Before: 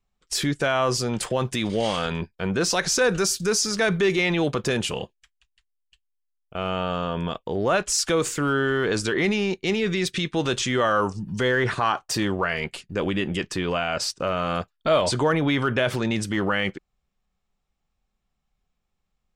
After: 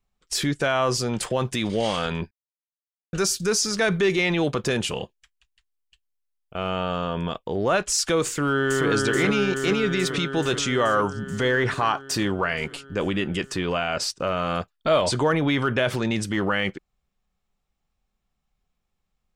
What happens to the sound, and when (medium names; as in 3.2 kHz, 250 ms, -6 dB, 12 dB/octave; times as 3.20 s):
2.31–3.13 s: mute
8.27–8.87 s: echo throw 430 ms, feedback 75%, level -2.5 dB